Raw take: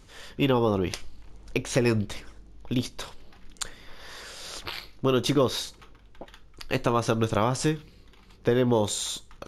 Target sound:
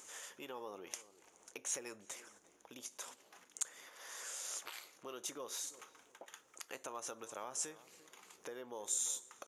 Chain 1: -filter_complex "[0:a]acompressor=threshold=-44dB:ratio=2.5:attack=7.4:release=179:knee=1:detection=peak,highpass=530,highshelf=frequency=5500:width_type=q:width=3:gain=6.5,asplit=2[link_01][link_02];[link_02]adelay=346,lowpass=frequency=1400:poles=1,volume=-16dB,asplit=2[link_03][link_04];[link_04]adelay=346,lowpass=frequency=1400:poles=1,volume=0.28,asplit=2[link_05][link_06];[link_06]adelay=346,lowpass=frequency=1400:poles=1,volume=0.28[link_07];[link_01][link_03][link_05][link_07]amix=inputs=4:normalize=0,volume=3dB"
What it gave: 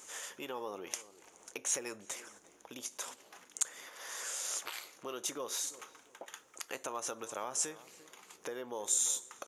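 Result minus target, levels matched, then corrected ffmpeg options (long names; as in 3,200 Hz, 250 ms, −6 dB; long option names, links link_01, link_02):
downward compressor: peak gain reduction −6 dB
-filter_complex "[0:a]acompressor=threshold=-54dB:ratio=2.5:attack=7.4:release=179:knee=1:detection=peak,highpass=530,highshelf=frequency=5500:width_type=q:width=3:gain=6.5,asplit=2[link_01][link_02];[link_02]adelay=346,lowpass=frequency=1400:poles=1,volume=-16dB,asplit=2[link_03][link_04];[link_04]adelay=346,lowpass=frequency=1400:poles=1,volume=0.28,asplit=2[link_05][link_06];[link_06]adelay=346,lowpass=frequency=1400:poles=1,volume=0.28[link_07];[link_01][link_03][link_05][link_07]amix=inputs=4:normalize=0,volume=3dB"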